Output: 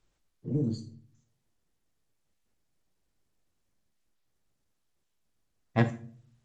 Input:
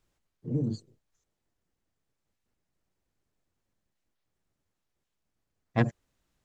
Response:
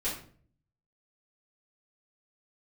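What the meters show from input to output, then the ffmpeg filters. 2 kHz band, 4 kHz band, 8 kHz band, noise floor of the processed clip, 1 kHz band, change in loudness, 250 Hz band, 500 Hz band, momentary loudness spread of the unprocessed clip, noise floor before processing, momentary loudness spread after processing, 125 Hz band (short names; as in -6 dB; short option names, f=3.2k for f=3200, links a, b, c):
+0.5 dB, +1.0 dB, n/a, -77 dBFS, +0.5 dB, +0.5 dB, +0.5 dB, +0.5 dB, 11 LU, -83 dBFS, 17 LU, 0.0 dB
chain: -filter_complex "[0:a]asplit=2[a][b];[1:a]atrim=start_sample=2205,highshelf=f=4k:g=10.5,adelay=14[c];[b][c]afir=irnorm=-1:irlink=0,volume=-17dB[d];[a][d]amix=inputs=2:normalize=0" -ar 44100 -c:a sbc -b:a 128k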